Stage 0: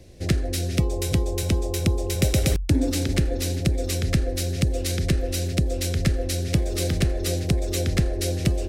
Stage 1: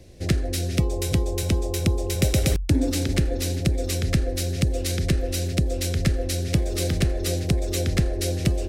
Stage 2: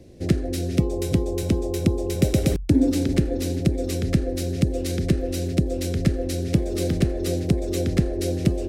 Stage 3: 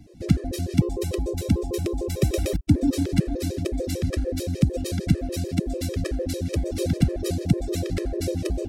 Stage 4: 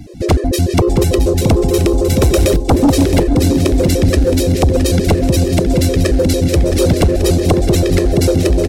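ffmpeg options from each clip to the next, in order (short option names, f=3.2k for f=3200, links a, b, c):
-af anull
-af "equalizer=f=270:w=0.53:g=10.5,volume=-5dB"
-af "afftfilt=real='re*gt(sin(2*PI*6.7*pts/sr)*(1-2*mod(floor(b*sr/1024/330),2)),0)':imag='im*gt(sin(2*PI*6.7*pts/sr)*(1-2*mod(floor(b*sr/1024/330),2)),0)':win_size=1024:overlap=0.75,volume=1.5dB"
-af "aecho=1:1:668|1336|2004|2672|3340:0.355|0.16|0.0718|0.0323|0.0145,aeval=exprs='0.531*sin(PI/2*3.55*val(0)/0.531)':c=same"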